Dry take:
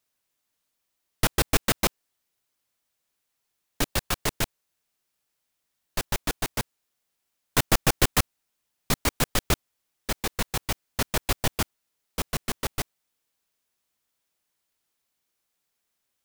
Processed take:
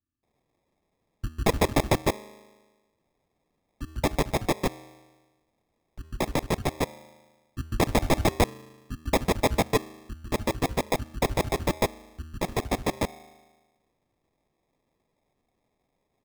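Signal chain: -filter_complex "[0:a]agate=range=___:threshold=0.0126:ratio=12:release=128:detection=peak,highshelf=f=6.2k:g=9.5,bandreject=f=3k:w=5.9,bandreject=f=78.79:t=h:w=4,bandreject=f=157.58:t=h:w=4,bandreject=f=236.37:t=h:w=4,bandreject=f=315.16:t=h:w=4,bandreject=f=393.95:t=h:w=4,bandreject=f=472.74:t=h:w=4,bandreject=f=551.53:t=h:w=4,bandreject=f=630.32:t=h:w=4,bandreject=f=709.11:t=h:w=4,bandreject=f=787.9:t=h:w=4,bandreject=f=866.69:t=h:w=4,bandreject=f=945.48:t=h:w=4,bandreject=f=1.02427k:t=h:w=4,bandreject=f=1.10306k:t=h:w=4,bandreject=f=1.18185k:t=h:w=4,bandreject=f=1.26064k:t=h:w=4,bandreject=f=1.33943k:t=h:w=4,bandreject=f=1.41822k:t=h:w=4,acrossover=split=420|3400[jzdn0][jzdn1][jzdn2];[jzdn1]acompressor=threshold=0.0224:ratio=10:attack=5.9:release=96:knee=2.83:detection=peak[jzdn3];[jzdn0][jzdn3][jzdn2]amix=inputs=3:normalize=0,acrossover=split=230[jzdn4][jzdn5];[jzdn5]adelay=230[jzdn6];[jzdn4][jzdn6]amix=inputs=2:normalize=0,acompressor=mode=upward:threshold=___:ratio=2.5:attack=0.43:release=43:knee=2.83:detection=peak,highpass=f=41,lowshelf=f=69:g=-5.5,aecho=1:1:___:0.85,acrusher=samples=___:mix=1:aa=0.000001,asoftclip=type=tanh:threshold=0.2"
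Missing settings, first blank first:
0.00141, 0.0126, 3.1, 30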